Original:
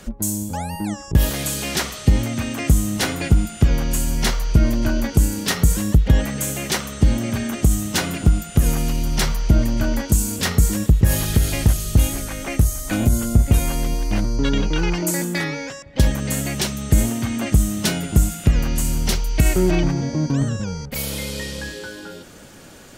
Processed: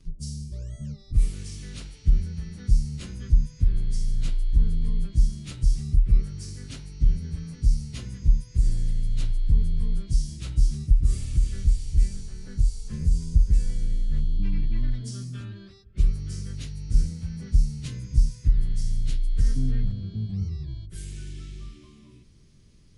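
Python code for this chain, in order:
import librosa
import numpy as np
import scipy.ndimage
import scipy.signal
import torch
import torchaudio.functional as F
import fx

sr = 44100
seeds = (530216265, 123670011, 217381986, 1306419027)

y = fx.pitch_bins(x, sr, semitones=-6.0)
y = fx.tone_stack(y, sr, knobs='10-0-1')
y = y * 10.0 ** (4.5 / 20.0)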